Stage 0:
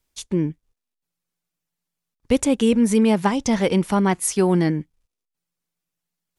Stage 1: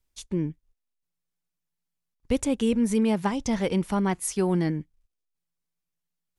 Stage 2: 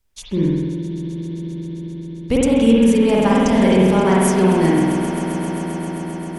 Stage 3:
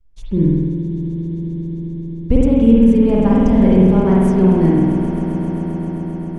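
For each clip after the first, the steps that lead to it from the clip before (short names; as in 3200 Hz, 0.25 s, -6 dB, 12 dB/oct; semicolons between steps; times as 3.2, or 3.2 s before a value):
low shelf 78 Hz +10 dB; gain -7 dB
swelling echo 0.132 s, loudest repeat 5, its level -15 dB; spring tank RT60 1.7 s, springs 48 ms, chirp 45 ms, DRR -5 dB; gain +5 dB
tilt -4 dB/oct; gain -5.5 dB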